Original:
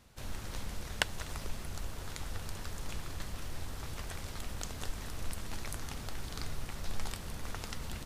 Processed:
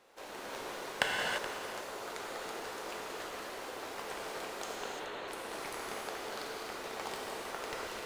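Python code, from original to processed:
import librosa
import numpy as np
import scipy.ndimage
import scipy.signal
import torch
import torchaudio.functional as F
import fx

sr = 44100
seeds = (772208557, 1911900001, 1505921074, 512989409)

p1 = scipy.signal.sosfilt(scipy.signal.butter(4, 380.0, 'highpass', fs=sr, output='sos'), x)
p2 = fx.high_shelf(p1, sr, hz=2800.0, db=-11.5)
p3 = fx.sample_hold(p2, sr, seeds[0], rate_hz=2000.0, jitter_pct=0)
p4 = p2 + (p3 * 10.0 ** (-10.5 / 20.0))
p5 = fx.brickwall_lowpass(p4, sr, high_hz=4500.0, at=(4.75, 5.28))
p6 = p5 + fx.echo_single(p5, sr, ms=425, db=-13.5, dry=0)
p7 = fx.rev_gated(p6, sr, seeds[1], gate_ms=370, shape='flat', drr_db=-3.0)
y = p7 * 10.0 ** (4.0 / 20.0)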